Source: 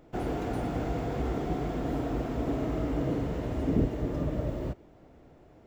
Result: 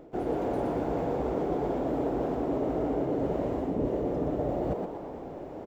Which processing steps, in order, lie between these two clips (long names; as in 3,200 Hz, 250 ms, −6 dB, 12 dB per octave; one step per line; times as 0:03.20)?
parametric band 440 Hz +12 dB 2.3 octaves
reversed playback
downward compressor 5 to 1, threshold −35 dBFS, peak gain reduction 19.5 dB
reversed playback
echo with shifted repeats 120 ms, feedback 43%, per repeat +120 Hz, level −5 dB
level +5.5 dB